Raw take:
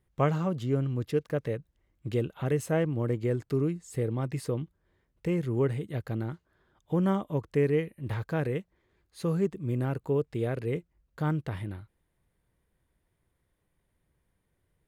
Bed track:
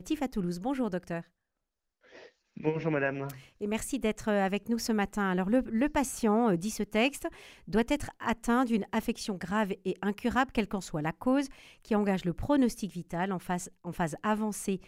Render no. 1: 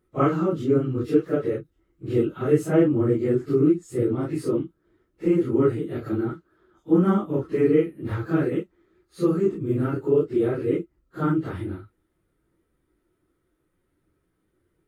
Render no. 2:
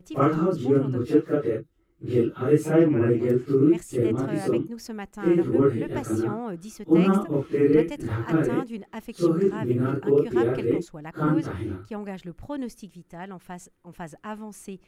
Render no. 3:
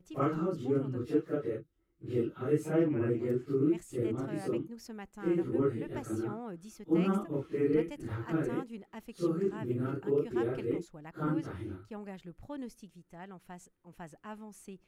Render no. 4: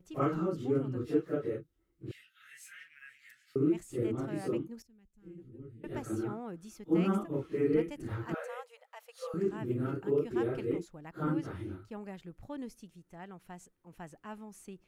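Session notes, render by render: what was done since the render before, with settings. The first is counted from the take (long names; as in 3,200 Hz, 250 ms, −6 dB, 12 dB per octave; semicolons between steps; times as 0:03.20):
random phases in long frames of 100 ms; hollow resonant body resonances 330/1,300 Hz, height 15 dB, ringing for 30 ms
mix in bed track −6.5 dB
level −9.5 dB
0:02.11–0:03.56: elliptic high-pass filter 1,700 Hz, stop band 50 dB; 0:04.82–0:05.84: guitar amp tone stack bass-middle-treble 10-0-1; 0:08.34–0:09.34: linear-phase brick-wall high-pass 460 Hz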